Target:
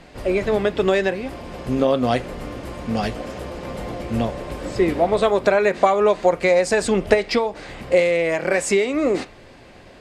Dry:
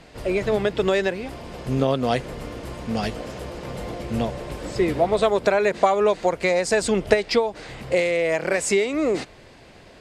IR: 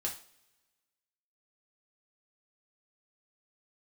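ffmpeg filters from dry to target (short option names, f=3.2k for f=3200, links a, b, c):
-filter_complex "[0:a]asplit=2[a][b];[1:a]atrim=start_sample=2205,asetrate=66150,aresample=44100,lowpass=3.5k[c];[b][c]afir=irnorm=-1:irlink=0,volume=-4.5dB[d];[a][d]amix=inputs=2:normalize=0"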